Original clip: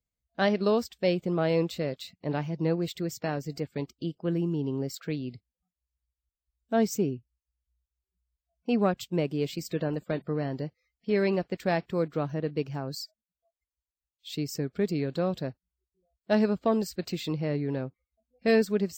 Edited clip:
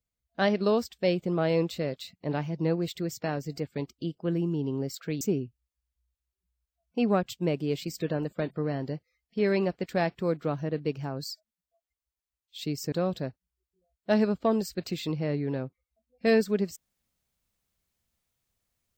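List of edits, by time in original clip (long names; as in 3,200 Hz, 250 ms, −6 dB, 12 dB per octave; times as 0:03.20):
0:05.21–0:06.92: remove
0:14.63–0:15.13: remove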